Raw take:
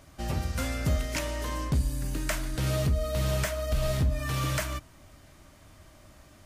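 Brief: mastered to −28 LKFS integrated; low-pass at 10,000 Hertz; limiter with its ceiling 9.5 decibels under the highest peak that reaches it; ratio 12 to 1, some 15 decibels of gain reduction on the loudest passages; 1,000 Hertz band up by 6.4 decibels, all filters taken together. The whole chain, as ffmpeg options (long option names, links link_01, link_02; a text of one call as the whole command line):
ffmpeg -i in.wav -af "lowpass=10000,equalizer=frequency=1000:width_type=o:gain=8,acompressor=threshold=-37dB:ratio=12,volume=18.5dB,alimiter=limit=-18.5dB:level=0:latency=1" out.wav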